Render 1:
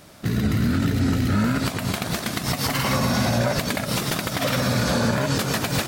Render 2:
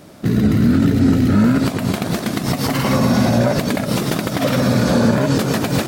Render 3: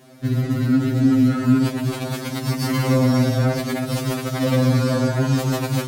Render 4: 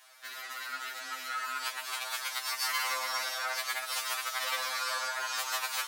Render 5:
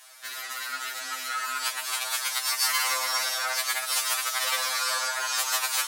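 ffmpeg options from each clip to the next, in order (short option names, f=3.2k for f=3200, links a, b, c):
-af "equalizer=f=290:w=0.47:g=9.5"
-af "afftfilt=real='re*2.45*eq(mod(b,6),0)':imag='im*2.45*eq(mod(b,6),0)':win_size=2048:overlap=0.75,volume=-2.5dB"
-af "highpass=f=1k:w=0.5412,highpass=f=1k:w=1.3066,volume=-1.5dB"
-af "equalizer=f=9.5k:t=o:w=1.7:g=7,volume=4dB"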